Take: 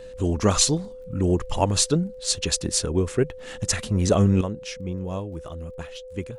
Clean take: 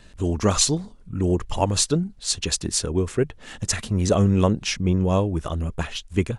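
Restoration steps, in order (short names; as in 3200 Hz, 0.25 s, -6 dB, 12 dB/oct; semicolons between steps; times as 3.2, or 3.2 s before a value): de-click; notch 510 Hz, Q 30; gain correction +10 dB, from 4.41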